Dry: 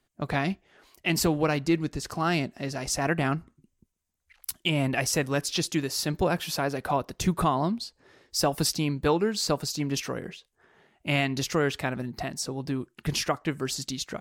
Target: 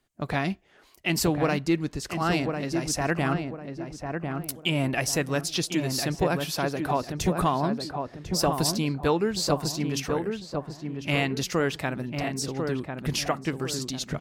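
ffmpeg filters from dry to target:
-filter_complex "[0:a]asplit=2[a][b];[b]adelay=1048,lowpass=f=1.3k:p=1,volume=-4.5dB,asplit=2[c][d];[d]adelay=1048,lowpass=f=1.3k:p=1,volume=0.38,asplit=2[e][f];[f]adelay=1048,lowpass=f=1.3k:p=1,volume=0.38,asplit=2[g][h];[h]adelay=1048,lowpass=f=1.3k:p=1,volume=0.38,asplit=2[i][j];[j]adelay=1048,lowpass=f=1.3k:p=1,volume=0.38[k];[a][c][e][g][i][k]amix=inputs=6:normalize=0"

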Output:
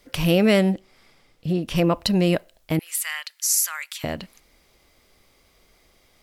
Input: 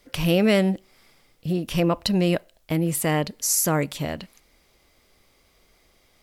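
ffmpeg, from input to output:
-filter_complex "[0:a]asettb=1/sr,asplit=3[a][b][c];[a]atrim=end=0.744[d];[b]atrim=start=0.74:end=1.76,asetpts=PTS-STARTPTS,afade=t=in:d=0.004:c=qsin,afade=t=out:st=1.016:d=0.004:c=qsin,highshelf=f=9.7k:g=-11[e];[c]atrim=start=1.756[f];[d][e]acrossfade=d=0.004:c1=hsin:c2=qsin[g];[g][f]acrossfade=d=0.004:c1=qsin:c2=hsin,asettb=1/sr,asplit=3[h][i][j];[h]atrim=end=2.794[k];[i]atrim=start=2.79:end=4.04,asetpts=PTS-STARTPTS,afade=t=in:d=0.004:c=qsin,afade=t=out:st=1.246:d=0.004:c=qsin,highpass=f=1.4k:w=0.5412,highpass=f=1.4k:w=1.3066[l];[j]atrim=start=4.036[m];[k][l]acrossfade=d=0.004:c1=hsin:c2=qsin[n];[n][m]acrossfade=d=0.004:c1=qsin:c2=hsin,volume=1.5dB"

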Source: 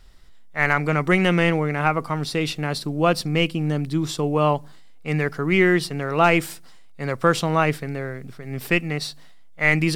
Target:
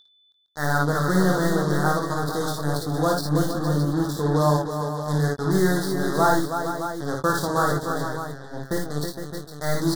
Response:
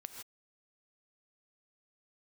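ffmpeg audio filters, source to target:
-filter_complex "[0:a]acrusher=bits=3:mix=0:aa=0.5,aeval=exprs='val(0)+0.00794*sin(2*PI*3500*n/s)':c=same,asuperstop=centerf=2500:order=8:qfactor=1.3,asplit=2[a][b];[b]adelay=21,volume=-6.5dB[c];[a][c]amix=inputs=2:normalize=0,aecho=1:1:43|54|61|321|461|615:0.133|0.596|0.473|0.447|0.335|0.355,volume=-4.5dB"

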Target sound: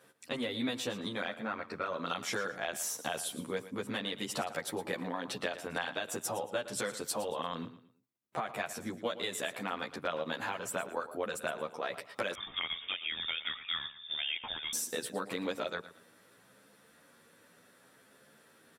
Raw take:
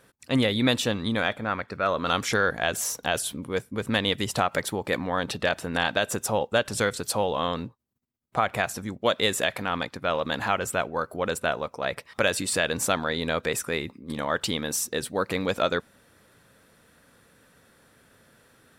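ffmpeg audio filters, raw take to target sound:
-filter_complex "[0:a]highpass=180,acompressor=threshold=-29dB:ratio=6,aecho=1:1:114|228|342:0.2|0.0638|0.0204,asettb=1/sr,asplit=3[a][b][c];[a]atrim=end=12.344[d];[b]atrim=start=12.34:end=14.73,asetpts=PTS-STARTPTS,afade=t=in:d=0.004:c=qsin,afade=t=out:st=2.386:d=0.004:c=qsin,lowpass=f=3.2k:t=q:w=0.5098,lowpass=f=3.2k:t=q:w=0.6013,lowpass=f=3.2k:t=q:w=0.9,lowpass=f=3.2k:t=q:w=2.563,afreqshift=-3800[e];[c]atrim=start=14.726[f];[d][e]acrossfade=d=0.004:c1=hsin:c2=qsin[g];[g][f]acrossfade=d=0.004:c1=qsin:c2=hsin,asplit=2[h][i];[i]adelay=11.1,afreqshift=0.71[j];[h][j]amix=inputs=2:normalize=1"

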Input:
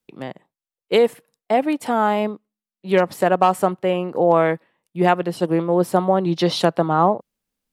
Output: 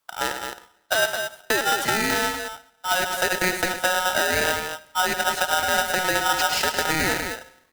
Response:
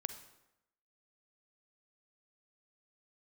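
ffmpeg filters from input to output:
-filter_complex "[0:a]bandreject=f=192.8:t=h:w=4,bandreject=f=385.6:t=h:w=4,bandreject=f=578.4:t=h:w=4,alimiter=limit=-14.5dB:level=0:latency=1:release=316,acompressor=threshold=-26dB:ratio=4,acrusher=bits=3:mode=log:mix=0:aa=0.000001,aecho=1:1:105|215.7:0.355|0.447,asplit=2[a][b];[1:a]atrim=start_sample=2205[c];[b][c]afir=irnorm=-1:irlink=0,volume=-2.5dB[d];[a][d]amix=inputs=2:normalize=0,aeval=exprs='val(0)*sgn(sin(2*PI*1100*n/s))':c=same,volume=2dB"

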